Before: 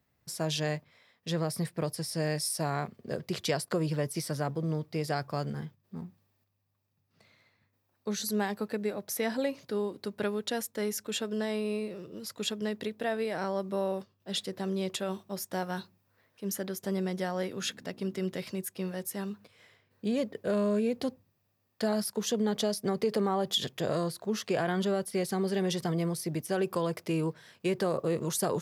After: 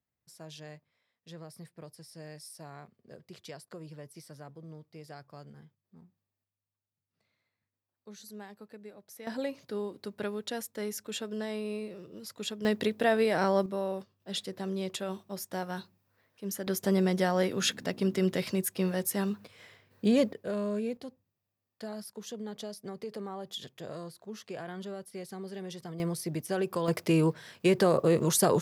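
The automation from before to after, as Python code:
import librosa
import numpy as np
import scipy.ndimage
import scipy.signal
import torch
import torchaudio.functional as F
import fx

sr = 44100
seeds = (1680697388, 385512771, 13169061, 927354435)

y = fx.gain(x, sr, db=fx.steps((0.0, -15.5), (9.27, -3.5), (12.65, 6.0), (13.66, -2.0), (16.67, 5.5), (20.33, -4.5), (20.97, -11.0), (26.0, -1.0), (26.88, 5.5)))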